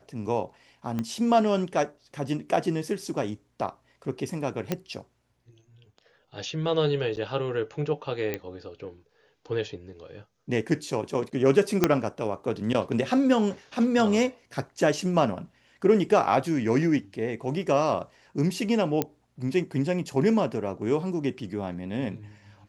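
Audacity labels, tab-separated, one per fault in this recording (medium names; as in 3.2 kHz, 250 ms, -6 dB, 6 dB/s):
0.990000	0.990000	pop -17 dBFS
4.720000	4.720000	pop -12 dBFS
7.160000	7.170000	dropout 9.5 ms
8.340000	8.340000	pop -15 dBFS
11.840000	11.840000	pop -5 dBFS
19.020000	19.020000	pop -10 dBFS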